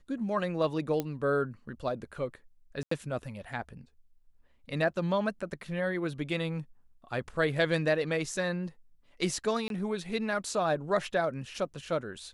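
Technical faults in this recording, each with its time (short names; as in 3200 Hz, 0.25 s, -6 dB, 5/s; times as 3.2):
1 pop -17 dBFS
2.83–2.91 gap 84 ms
9.68–9.7 gap 22 ms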